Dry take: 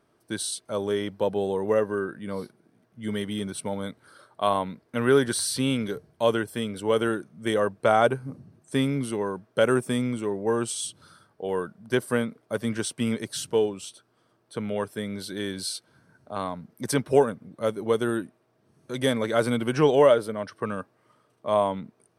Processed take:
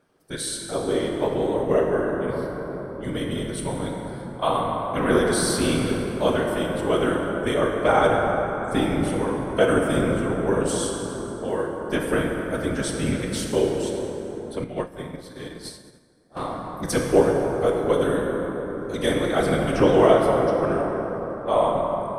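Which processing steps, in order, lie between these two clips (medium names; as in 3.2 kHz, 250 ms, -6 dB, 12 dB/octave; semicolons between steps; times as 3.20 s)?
whisper effect; plate-style reverb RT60 4.6 s, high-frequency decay 0.4×, pre-delay 0 ms, DRR -0.5 dB; 14.64–16.37 s: upward expansion 2.5:1, over -37 dBFS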